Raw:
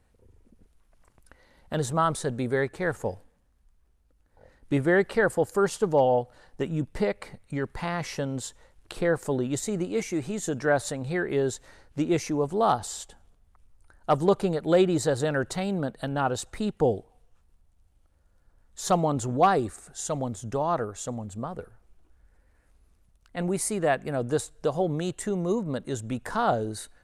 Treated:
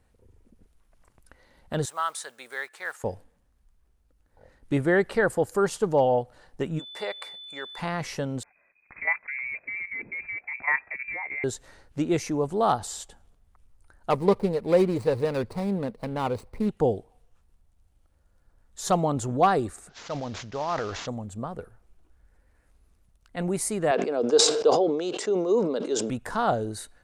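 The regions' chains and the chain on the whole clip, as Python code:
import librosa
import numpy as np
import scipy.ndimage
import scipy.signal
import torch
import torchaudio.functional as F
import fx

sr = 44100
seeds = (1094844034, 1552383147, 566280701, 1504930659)

y = fx.chain(x, sr, fx.block_float(bits=7),
    fx.highpass(hz=1200.0, slope=12), at=(1.85, 3.04))
y = fx.highpass(y, sr, hz=670.0, slope=12, at=(6.78, 7.78), fade=0.02)
y = fx.dmg_tone(y, sr, hz=3500.0, level_db=-40.0, at=(6.78, 7.78), fade=0.02)
y = fx.chain(y, sr, fx.highpass(hz=47.0, slope=12),
    fx.level_steps(step_db=11),
    fx.freq_invert(carrier_hz=2500), at=(8.43, 11.44))
y = fx.chain(y, sr, fx.median_filter(points=25),
    fx.ripple_eq(per_octave=0.91, db=7), at=(14.1, 16.69))
y = fx.chain(y, sr, fx.cvsd(bps=32000),
    fx.low_shelf(hz=470.0, db=-8.5),
    fx.sustainer(db_per_s=40.0), at=(19.89, 21.07))
y = fx.chain(y, sr, fx.cabinet(low_hz=270.0, low_slope=24, high_hz=6100.0, hz=(440.0, 1800.0, 5000.0), db=(8, -8, 7)),
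    fx.sustainer(db_per_s=47.0), at=(23.91, 26.1))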